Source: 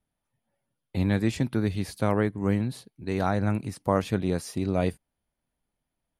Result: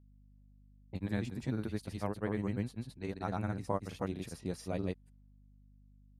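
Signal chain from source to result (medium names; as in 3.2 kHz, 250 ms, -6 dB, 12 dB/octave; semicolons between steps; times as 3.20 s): granulator 100 ms, grains 20 per s, spray 196 ms, pitch spread up and down by 0 st; level-controlled noise filter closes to 550 Hz, open at -29.5 dBFS; hum 50 Hz, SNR 22 dB; trim -9 dB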